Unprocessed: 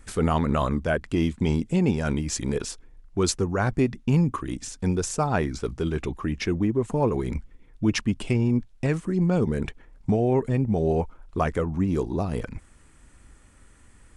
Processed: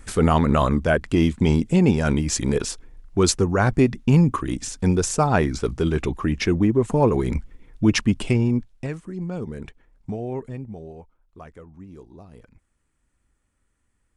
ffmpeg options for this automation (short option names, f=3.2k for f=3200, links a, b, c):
-af "volume=5dB,afade=t=out:st=8.18:d=0.78:silence=0.237137,afade=t=out:st=10.38:d=0.55:silence=0.298538"